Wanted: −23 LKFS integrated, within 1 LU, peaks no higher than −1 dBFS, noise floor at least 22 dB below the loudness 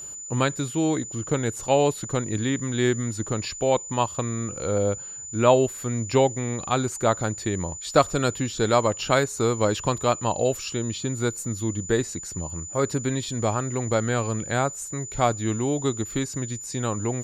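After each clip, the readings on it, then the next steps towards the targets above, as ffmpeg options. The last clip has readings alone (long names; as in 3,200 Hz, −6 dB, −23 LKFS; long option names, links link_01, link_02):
interfering tone 7,000 Hz; level of the tone −35 dBFS; integrated loudness −25.0 LKFS; sample peak −4.0 dBFS; target loudness −23.0 LKFS
→ -af "bandreject=frequency=7000:width=30"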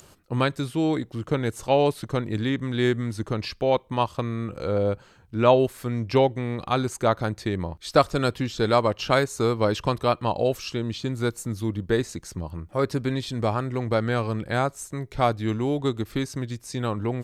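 interfering tone none found; integrated loudness −25.5 LKFS; sample peak −4.5 dBFS; target loudness −23.0 LKFS
→ -af "volume=2.5dB"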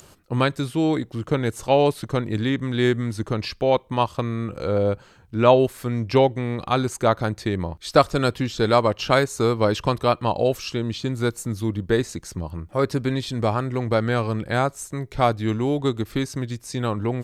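integrated loudness −23.0 LKFS; sample peak −2.0 dBFS; background noise floor −51 dBFS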